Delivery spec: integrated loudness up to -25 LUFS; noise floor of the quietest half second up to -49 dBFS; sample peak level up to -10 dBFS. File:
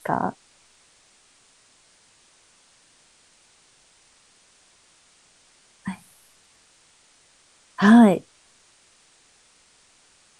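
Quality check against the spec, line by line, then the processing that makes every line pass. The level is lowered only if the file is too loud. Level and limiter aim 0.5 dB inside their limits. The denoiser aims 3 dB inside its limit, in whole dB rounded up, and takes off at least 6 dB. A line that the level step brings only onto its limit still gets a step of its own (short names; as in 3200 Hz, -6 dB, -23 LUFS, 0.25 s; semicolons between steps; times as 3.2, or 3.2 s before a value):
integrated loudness -18.5 LUFS: fail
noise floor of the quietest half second -58 dBFS: OK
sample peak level -4.0 dBFS: fail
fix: gain -7 dB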